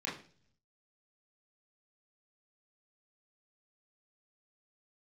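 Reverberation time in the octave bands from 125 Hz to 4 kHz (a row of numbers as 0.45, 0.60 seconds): 1.0, 0.70, 0.50, 0.40, 0.40, 0.55 seconds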